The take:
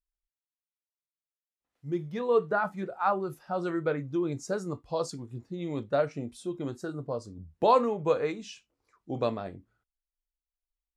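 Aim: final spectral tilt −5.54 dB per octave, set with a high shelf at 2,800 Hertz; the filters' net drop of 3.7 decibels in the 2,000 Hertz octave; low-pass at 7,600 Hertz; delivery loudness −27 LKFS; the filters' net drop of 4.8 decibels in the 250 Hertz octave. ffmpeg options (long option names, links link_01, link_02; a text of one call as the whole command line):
ffmpeg -i in.wav -af "lowpass=7600,equalizer=frequency=250:width_type=o:gain=-7.5,equalizer=frequency=2000:width_type=o:gain=-8,highshelf=frequency=2800:gain=5,volume=5.5dB" out.wav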